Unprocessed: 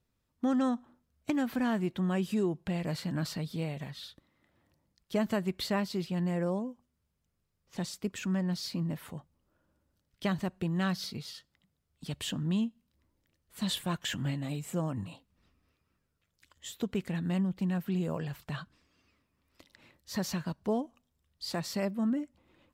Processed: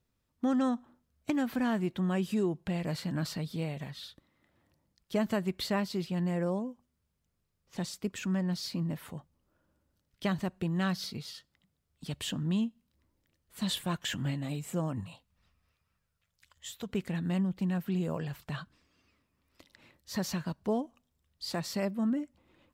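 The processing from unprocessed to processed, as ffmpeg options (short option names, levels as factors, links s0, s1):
-filter_complex "[0:a]asettb=1/sr,asplit=3[s0][s1][s2];[s0]atrim=end=15.004[s3];[s1]atrim=start=15:end=16.89,asetpts=PTS-STARTPTS,afade=t=in:d=0.004:c=qsin,afade=t=out:st=1.886:d=0.004:c=qsin,equalizer=f=310:w=1.5:g=-13.5[s4];[s2]atrim=start=16.886[s5];[s3][s4]acrossfade=d=0.004:c1=hsin:c2=qsin[s6];[s6][s5]acrossfade=d=0.004:c1=qsin:c2=hsin"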